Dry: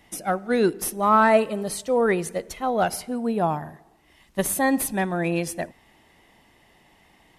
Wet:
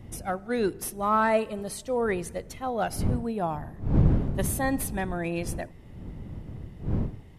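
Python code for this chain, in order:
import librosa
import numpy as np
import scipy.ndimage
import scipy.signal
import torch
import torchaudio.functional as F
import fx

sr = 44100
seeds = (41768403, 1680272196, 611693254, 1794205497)

y = fx.dmg_wind(x, sr, seeds[0], corner_hz=150.0, level_db=-25.0)
y = F.gain(torch.from_numpy(y), -6.0).numpy()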